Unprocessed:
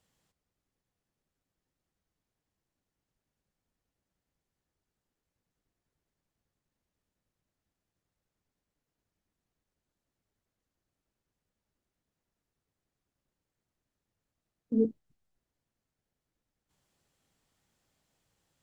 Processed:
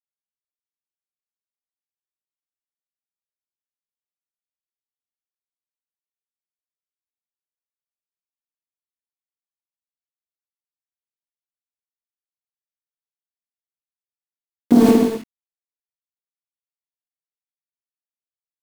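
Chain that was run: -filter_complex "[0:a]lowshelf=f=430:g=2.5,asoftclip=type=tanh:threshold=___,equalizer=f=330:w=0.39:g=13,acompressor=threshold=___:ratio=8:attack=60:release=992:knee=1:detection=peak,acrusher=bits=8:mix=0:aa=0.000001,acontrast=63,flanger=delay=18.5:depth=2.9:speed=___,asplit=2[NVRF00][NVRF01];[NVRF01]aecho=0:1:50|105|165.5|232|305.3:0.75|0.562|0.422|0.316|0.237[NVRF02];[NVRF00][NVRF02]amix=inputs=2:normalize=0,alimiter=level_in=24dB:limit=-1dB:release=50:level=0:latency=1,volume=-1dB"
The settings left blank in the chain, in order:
-31.5dB, -39dB, 0.79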